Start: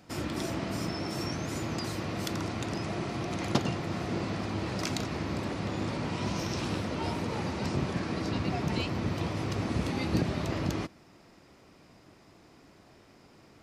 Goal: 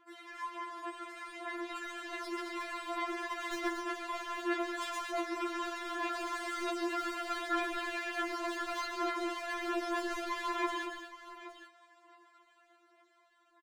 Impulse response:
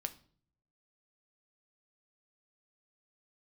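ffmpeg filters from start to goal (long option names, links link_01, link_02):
-filter_complex "[0:a]dynaudnorm=framelen=260:gausssize=13:maxgain=8dB,asetrate=68011,aresample=44100,atempo=0.64842,bandpass=frequency=1400:width_type=q:width=0.99:csg=0,asplit=2[link_01][link_02];[link_02]acrusher=bits=4:mix=0:aa=0.5,volume=-10.5dB[link_03];[link_01][link_03]amix=inputs=2:normalize=0,volume=25.5dB,asoftclip=hard,volume=-25.5dB,aphaser=in_gain=1:out_gain=1:delay=3.1:decay=0.65:speed=0.66:type=sinusoidal,asplit=2[link_04][link_05];[link_05]aecho=0:1:133|227|820:0.355|0.398|0.211[link_06];[link_04][link_06]amix=inputs=2:normalize=0,afftfilt=real='re*4*eq(mod(b,16),0)':imag='im*4*eq(mod(b,16),0)':win_size=2048:overlap=0.75,volume=-6.5dB"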